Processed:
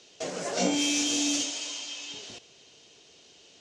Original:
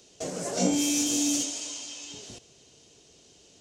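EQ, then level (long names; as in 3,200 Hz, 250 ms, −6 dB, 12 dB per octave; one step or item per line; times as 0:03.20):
low-pass filter 3,300 Hz 12 dB per octave
spectral tilt +3 dB per octave
+3.0 dB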